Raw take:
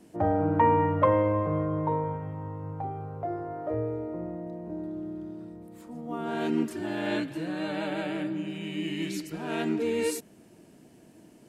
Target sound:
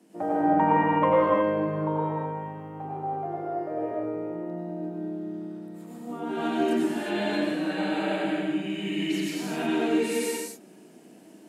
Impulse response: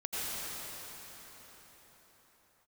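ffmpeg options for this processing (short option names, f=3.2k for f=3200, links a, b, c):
-filter_complex "[0:a]highpass=f=180:w=0.5412,highpass=f=180:w=1.3066[a];[1:a]atrim=start_sample=2205,afade=t=out:st=0.43:d=0.01,atrim=end_sample=19404[b];[a][b]afir=irnorm=-1:irlink=0"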